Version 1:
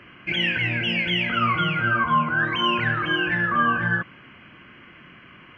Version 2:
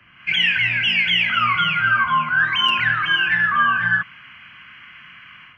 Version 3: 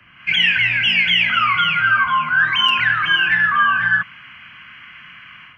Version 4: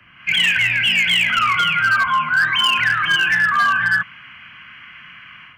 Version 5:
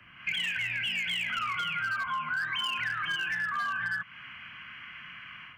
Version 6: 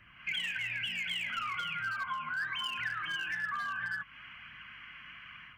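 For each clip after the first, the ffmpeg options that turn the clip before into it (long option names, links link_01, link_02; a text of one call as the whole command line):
ffmpeg -i in.wav -filter_complex "[0:a]acrossover=split=240|660|1100[link_01][link_02][link_03][link_04];[link_02]acrusher=bits=3:mix=0:aa=0.000001[link_05];[link_04]dynaudnorm=framelen=130:gausssize=3:maxgain=11.5dB[link_06];[link_01][link_05][link_03][link_06]amix=inputs=4:normalize=0,volume=-4dB" out.wav
ffmpeg -i in.wav -filter_complex "[0:a]equalizer=frequency=400:width_type=o:width=0.39:gain=-2,acrossover=split=830[link_01][link_02];[link_01]alimiter=level_in=6.5dB:limit=-24dB:level=0:latency=1,volume=-6.5dB[link_03];[link_03][link_02]amix=inputs=2:normalize=0,volume=2.5dB" out.wav
ffmpeg -i in.wav -af "asoftclip=type=hard:threshold=-11dB" out.wav
ffmpeg -i in.wav -af "acompressor=threshold=-25dB:ratio=6,volume=-5dB" out.wav
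ffmpeg -i in.wav -af "flanger=delay=0.5:depth=3.2:regen=68:speed=1.1:shape=sinusoidal,aeval=exprs='val(0)+0.000282*(sin(2*PI*50*n/s)+sin(2*PI*2*50*n/s)/2+sin(2*PI*3*50*n/s)/3+sin(2*PI*4*50*n/s)/4+sin(2*PI*5*50*n/s)/5)':channel_layout=same" out.wav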